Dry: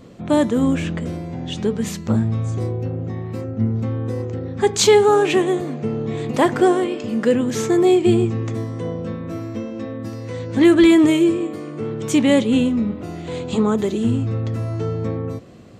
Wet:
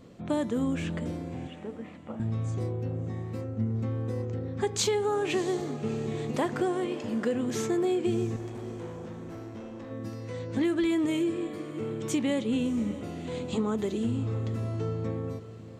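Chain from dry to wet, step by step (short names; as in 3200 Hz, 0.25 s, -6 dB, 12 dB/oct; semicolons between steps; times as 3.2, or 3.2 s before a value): compressor, threshold -16 dBFS, peak gain reduction 8 dB; 1.47–2.2 speaker cabinet 370–2100 Hz, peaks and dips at 400 Hz -9 dB, 1000 Hz -4 dB, 1600 Hz -10 dB; 8.36–9.91 tube stage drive 30 dB, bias 0.4; diffused feedback echo 0.649 s, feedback 40%, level -15 dB; gain -8 dB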